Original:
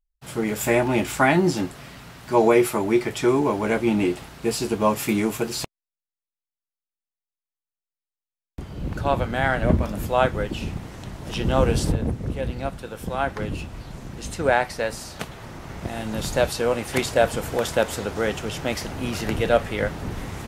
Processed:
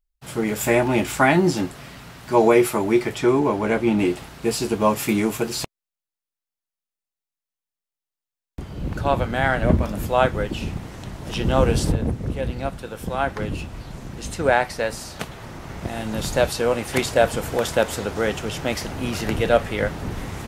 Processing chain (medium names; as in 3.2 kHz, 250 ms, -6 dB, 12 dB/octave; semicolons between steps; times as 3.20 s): 3.15–3.99 s: treble shelf 4.9 kHz -6 dB; trim +1.5 dB